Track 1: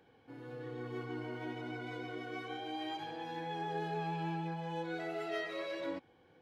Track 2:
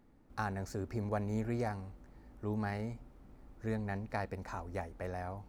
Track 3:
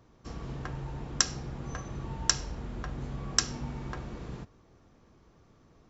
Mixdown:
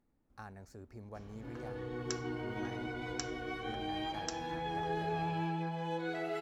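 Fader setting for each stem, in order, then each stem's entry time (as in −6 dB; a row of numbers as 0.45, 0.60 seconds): +2.0, −12.5, −16.0 decibels; 1.15, 0.00, 0.90 seconds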